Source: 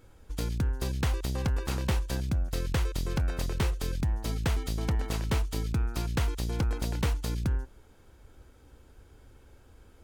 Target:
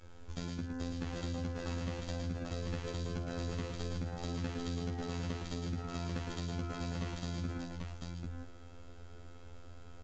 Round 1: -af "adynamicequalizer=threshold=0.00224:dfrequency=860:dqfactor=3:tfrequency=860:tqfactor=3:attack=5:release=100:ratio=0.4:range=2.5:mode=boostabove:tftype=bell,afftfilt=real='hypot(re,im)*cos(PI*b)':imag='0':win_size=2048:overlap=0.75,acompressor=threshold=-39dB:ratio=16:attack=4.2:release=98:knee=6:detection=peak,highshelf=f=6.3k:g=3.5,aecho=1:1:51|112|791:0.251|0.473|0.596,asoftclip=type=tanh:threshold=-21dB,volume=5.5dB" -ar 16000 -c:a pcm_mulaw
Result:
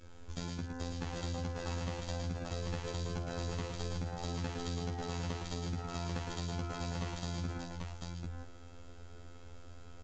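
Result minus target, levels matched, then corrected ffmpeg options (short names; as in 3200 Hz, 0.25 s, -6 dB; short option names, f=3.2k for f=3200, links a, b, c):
8000 Hz band +3.5 dB; 1000 Hz band +3.0 dB
-af "adynamicequalizer=threshold=0.00224:dfrequency=250:dqfactor=3:tfrequency=250:tqfactor=3:attack=5:release=100:ratio=0.4:range=2.5:mode=boostabove:tftype=bell,afftfilt=real='hypot(re,im)*cos(PI*b)':imag='0':win_size=2048:overlap=0.75,acompressor=threshold=-39dB:ratio=16:attack=4.2:release=98:knee=6:detection=peak,highshelf=f=6.3k:g=-3,aecho=1:1:51|112|791:0.251|0.473|0.596,asoftclip=type=tanh:threshold=-21dB,volume=5.5dB" -ar 16000 -c:a pcm_mulaw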